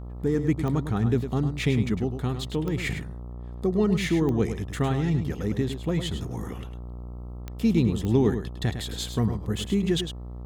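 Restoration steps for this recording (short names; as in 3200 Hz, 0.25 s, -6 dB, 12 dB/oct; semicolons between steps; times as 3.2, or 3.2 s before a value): de-click; de-hum 60.4 Hz, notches 22; inverse comb 0.104 s -9 dB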